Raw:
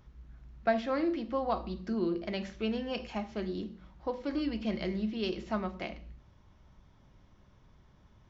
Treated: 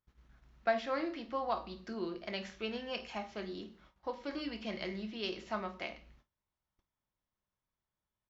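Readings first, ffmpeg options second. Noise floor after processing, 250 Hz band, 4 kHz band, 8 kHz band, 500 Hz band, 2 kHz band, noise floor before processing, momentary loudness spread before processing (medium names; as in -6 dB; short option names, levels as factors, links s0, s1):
under -85 dBFS, -8.5 dB, 0.0 dB, no reading, -4.5 dB, -0.5 dB, -62 dBFS, 10 LU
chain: -filter_complex "[0:a]agate=range=0.0631:threshold=0.00251:ratio=16:detection=peak,lowshelf=f=430:g=-11.5,asplit=2[s0][s1];[s1]aecho=0:1:25|51:0.251|0.158[s2];[s0][s2]amix=inputs=2:normalize=0"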